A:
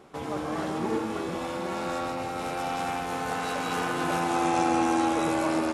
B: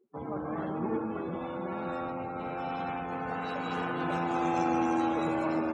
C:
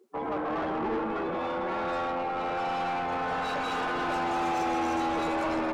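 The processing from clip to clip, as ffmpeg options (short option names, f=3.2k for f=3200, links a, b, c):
-af "afftdn=nr=34:nf=-39,equalizer=f=190:w=1.3:g=4,volume=-4.5dB"
-filter_complex "[0:a]highpass=150,bass=f=250:g=-2,treble=f=4k:g=12,asplit=2[a][b];[b]highpass=f=720:p=1,volume=23dB,asoftclip=type=tanh:threshold=-20dB[c];[a][c]amix=inputs=2:normalize=0,lowpass=f=1.8k:p=1,volume=-6dB,volume=-2dB"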